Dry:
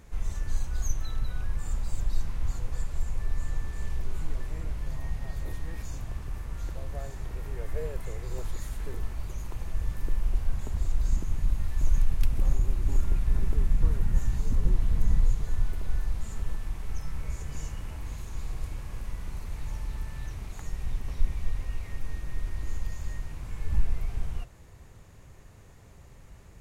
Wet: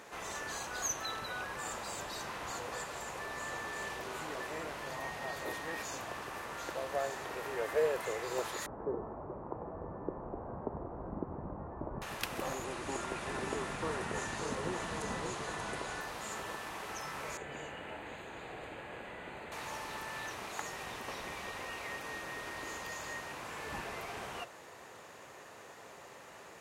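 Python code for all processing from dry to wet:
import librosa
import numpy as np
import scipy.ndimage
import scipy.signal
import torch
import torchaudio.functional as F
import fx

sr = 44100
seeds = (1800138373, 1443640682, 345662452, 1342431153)

y = fx.chain(x, sr, fx.lowpass(hz=1100.0, slope=24),
    fx.tilt_shelf(db=6.5, hz=650.0), at=(8.66, 12.02))
y = fx.chain(y, sr, fx.echo_single(ms=584, db=-6.0),
    fx.resample_bad(factor=2, down='none', up='filtered'), at=(12.64, 16.01))
y = fx.chain(y, sr, fx.moving_average(points=8),
    fx.peak_eq(hz=1100.0, db=-9.5, octaves=0.49), at=(17.37, 19.52))
y = scipy.signal.sosfilt(scipy.signal.butter(2, 500.0, 'highpass', fs=sr, output='sos'), y)
y = fx.high_shelf(y, sr, hz=5000.0, db=-9.0)
y = fx.notch(y, sr, hz=2200.0, q=23.0)
y = y * 10.0 ** (11.0 / 20.0)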